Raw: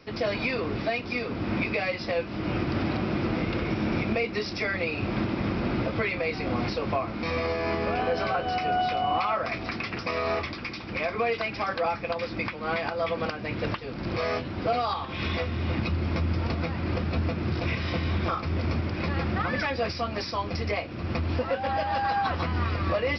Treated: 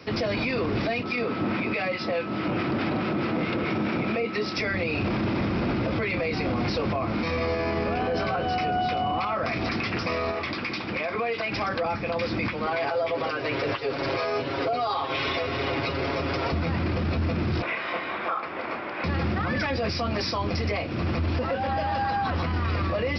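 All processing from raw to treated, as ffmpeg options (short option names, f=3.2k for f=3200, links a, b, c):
-filter_complex "[0:a]asettb=1/sr,asplit=3[a][b][c];[a]atrim=end=1.034[d];[b]atrim=start=1.03:end=4.57,asetpts=PTS-STARTPTS,afade=t=in:d=0.004:c=qsin,afade=t=out:st=3.536:d=0.004:c=qsin,acrossover=split=1100[e][f];[e]aeval=exprs='val(0)*(1-0.5/2+0.5/2*cos(2*PI*4.7*n/s))':c=same[g];[f]aeval=exprs='val(0)*(1-0.5/2-0.5/2*cos(2*PI*4.7*n/s))':c=same[h];[g][h]amix=inputs=2:normalize=0,aeval=exprs='val(0)+0.00562*sin(2*PI*1300*n/s)':c=same,highpass=140,lowpass=4.6k[i];[c]atrim=start=4.566[j];[d][i]acrossfade=d=0.004:c1=hsin:c2=qsin[k];[k][j]acrossfade=d=0.004:c1=qsin:c2=hsin,asettb=1/sr,asplit=3[l][m][n];[l]atrim=end=10.314[o];[m]atrim=start=10.31:end=11.52,asetpts=PTS-STARTPTS,afade=t=in:d=0.004:c=qsin,afade=t=out:st=1.206:d=0.004:c=qsin,lowpass=5.3k,lowshelf=f=100:g=-11.5,acompressor=threshold=-33dB:ratio=3:attack=3.2:release=140:knee=1:detection=peak[p];[n]atrim=start=11.516[q];[o][p]acrossfade=d=0.004:c1=hsin:c2=qsin[r];[r][q]acrossfade=d=0.004:c1=qsin:c2=hsin,asettb=1/sr,asplit=3[s][t][u];[s]atrim=end=12.664[v];[t]atrim=start=12.66:end=16.52,asetpts=PTS-STARTPTS,afade=t=in:d=0.004:c=qsin,afade=t=out:st=3.856:d=0.004:c=qsin,lowshelf=f=300:t=q:w=1.5:g=-10.5,aecho=1:1:7.3:0.94,atrim=end_sample=170226[w];[u]atrim=start=16.516[x];[v][w]acrossfade=d=0.004:c1=hsin:c2=qsin[y];[y][x]acrossfade=d=0.004:c1=qsin:c2=hsin,asettb=1/sr,asplit=3[z][aa][ab];[z]atrim=end=17.624[ac];[aa]atrim=start=17.62:end=19.04,asetpts=PTS-STARTPTS,afade=t=in:d=0.004:c=qsin,afade=t=out:st=1.416:d=0.004:c=qsin,highpass=650,lowpass=2.1k,asplit=2[ad][ae];[ae]adelay=29,volume=-10.5dB[af];[ad][af]amix=inputs=2:normalize=0,atrim=end_sample=62622[ag];[ab]atrim=start=19.036[ah];[ac][ag]acrossfade=d=0.004:c1=hsin:c2=qsin[ai];[ai][ah]acrossfade=d=0.004:c1=qsin:c2=hsin,acrossover=split=370[aj][ak];[ak]acompressor=threshold=-30dB:ratio=6[al];[aj][al]amix=inputs=2:normalize=0,highpass=54,alimiter=level_in=2.5dB:limit=-24dB:level=0:latency=1:release=14,volume=-2.5dB,volume=7.5dB"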